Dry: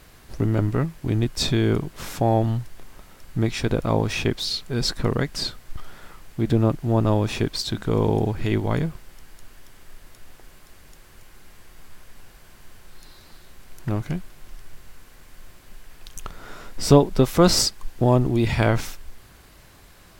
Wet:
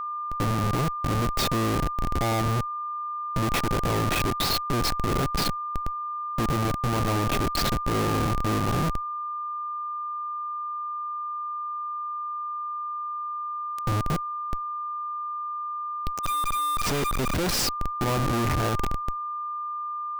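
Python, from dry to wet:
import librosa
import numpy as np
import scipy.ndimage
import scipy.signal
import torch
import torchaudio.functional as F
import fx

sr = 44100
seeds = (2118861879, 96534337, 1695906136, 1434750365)

y = fx.schmitt(x, sr, flips_db=-27.5)
y = y + 10.0 ** (-29.0 / 20.0) * np.sin(2.0 * np.pi * 1200.0 * np.arange(len(y)) / sr)
y = fx.quant_companded(y, sr, bits=2, at=(16.23, 17.66), fade=0.02)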